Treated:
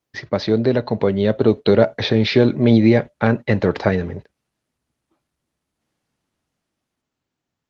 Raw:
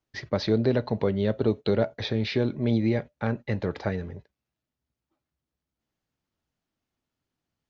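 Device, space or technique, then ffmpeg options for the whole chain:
video call: -af "highpass=f=120:p=1,dynaudnorm=f=230:g=13:m=2,volume=2.11" -ar 48000 -c:a libopus -b:a 24k

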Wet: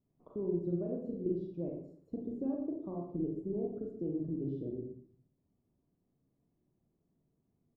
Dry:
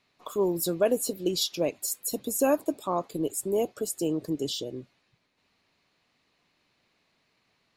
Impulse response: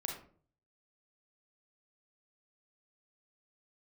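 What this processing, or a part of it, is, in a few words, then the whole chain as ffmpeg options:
television next door: -filter_complex "[0:a]asettb=1/sr,asplit=3[s0][s1][s2];[s0]atrim=end=0.654[s3];[s1]atrim=start=0.65:end=1.4,asetpts=PTS-STARTPTS,afade=t=in:d=0.004:c=qsin,afade=t=out:st=0.746:d=0.004:c=qsin,asplit=2[s4][s5];[s5]adelay=35,volume=0.668[s6];[s4][s6]amix=inputs=2:normalize=0,atrim=end_sample=33075[s7];[s2]atrim=start=1.396[s8];[s3][s7]acrossfade=d=0.004:c1=hsin:c2=qsin[s9];[s9][s8]acrossfade=d=0.004:c1=qsin:c2=hsin,acompressor=threshold=0.0355:ratio=3,lowpass=260[s10];[1:a]atrim=start_sample=2205[s11];[s10][s11]afir=irnorm=-1:irlink=0,aecho=1:1:118:0.224,volume=1.26"

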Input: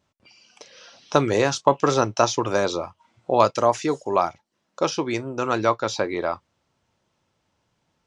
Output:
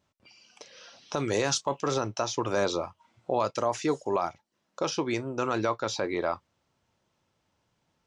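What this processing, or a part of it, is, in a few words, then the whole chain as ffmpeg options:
stacked limiters: -filter_complex "[0:a]asettb=1/sr,asplit=3[s0][s1][s2];[s0]atrim=end=1.174[s3];[s1]atrim=start=1.17:end=1.82,asetpts=PTS-STARTPTS,afade=t=in:d=0.004:c=qsin,afade=t=out:st=0.646:d=0.004:c=qsin,highshelf=f=3900:g=8[s4];[s2]atrim=start=1.816[s5];[s3][s4]acrossfade=d=0.004:c1=hsin:c2=qsin[s6];[s6][s5]acrossfade=d=0.004:c1=qsin:c2=hsin,alimiter=limit=0.447:level=0:latency=1:release=383,alimiter=limit=0.224:level=0:latency=1:release=33,volume=0.708"

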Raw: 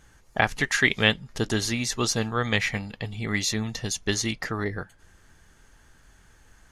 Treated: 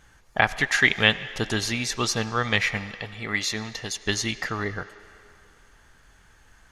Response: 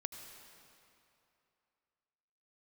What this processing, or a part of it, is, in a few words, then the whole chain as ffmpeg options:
filtered reverb send: -filter_complex "[0:a]asplit=2[s0][s1];[s1]highpass=530,lowpass=5400[s2];[1:a]atrim=start_sample=2205[s3];[s2][s3]afir=irnorm=-1:irlink=0,volume=0.708[s4];[s0][s4]amix=inputs=2:normalize=0,asettb=1/sr,asplit=3[s5][s6][s7];[s5]atrim=end=3.014[s8];[s6]atrim=start=3.01:end=4.06,asetpts=PTS-STARTPTS,afade=t=in:d=0.004:c=qsin,afade=t=out:st=1.046:d=0.004:c=qsin,bass=f=250:g=-6,treble=f=4000:g=-2[s9];[s7]atrim=start=4.056[s10];[s8][s9]acrossfade=d=0.004:c1=hsin:c2=qsin[s11];[s11][s10]acrossfade=d=0.004:c1=qsin:c2=hsin,volume=0.891"

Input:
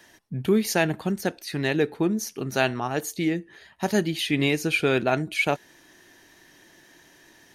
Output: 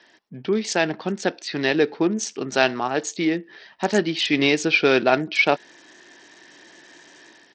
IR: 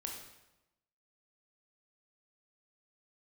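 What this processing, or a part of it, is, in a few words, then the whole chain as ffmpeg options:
Bluetooth headset: -af "highpass=240,dynaudnorm=f=660:g=3:m=2.24,aresample=16000,aresample=44100" -ar 44100 -c:a sbc -b:a 64k

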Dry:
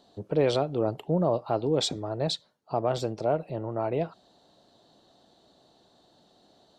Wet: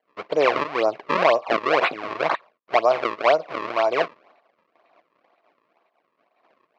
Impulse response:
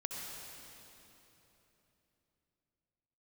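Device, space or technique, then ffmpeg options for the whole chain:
circuit-bent sampling toy: -af "agate=range=0.0891:threshold=0.00112:ratio=16:detection=peak,acrusher=samples=34:mix=1:aa=0.000001:lfo=1:lforange=54.4:lforate=2,highpass=470,equalizer=f=660:t=q:w=4:g=5,equalizer=f=1100:t=q:w=4:g=9,equalizer=f=2300:t=q:w=4:g=5,equalizer=f=3500:t=q:w=4:g=-5,lowpass=f=4000:w=0.5412,lowpass=f=4000:w=1.3066,volume=2.11"

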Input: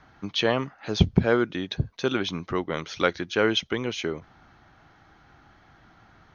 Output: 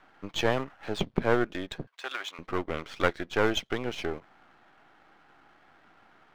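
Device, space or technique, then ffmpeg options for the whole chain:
crystal radio: -filter_complex "[0:a]highpass=280,lowpass=3000,aeval=exprs='if(lt(val(0),0),0.251*val(0),val(0))':c=same,asettb=1/sr,asplit=3[s0][s1][s2];[s0]atrim=end=1.874[s3];[s1]atrim=start=1.87:end=2.39,asetpts=PTS-STARTPTS,afade=t=in:d=0.004:c=qsin,afade=t=out:st=0.516:d=0.004:c=qsin,highpass=1000[s4];[s2]atrim=start=2.386[s5];[s3][s4]acrossfade=d=0.004:c1=hsin:c2=qsin[s6];[s6][s5]acrossfade=d=0.004:c1=qsin:c2=hsin,volume=1.19"

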